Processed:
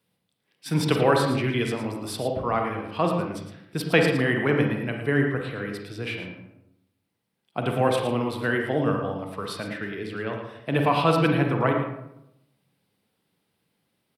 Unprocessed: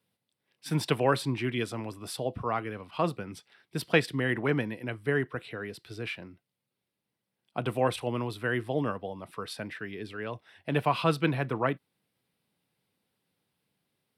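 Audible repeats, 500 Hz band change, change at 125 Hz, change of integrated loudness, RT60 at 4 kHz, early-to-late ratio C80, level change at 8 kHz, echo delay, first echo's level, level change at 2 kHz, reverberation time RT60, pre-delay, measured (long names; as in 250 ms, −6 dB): 1, +6.0 dB, +6.0 dB, +6.0 dB, 0.45 s, 5.5 dB, +4.0 dB, 112 ms, −9.5 dB, +5.5 dB, 0.85 s, 38 ms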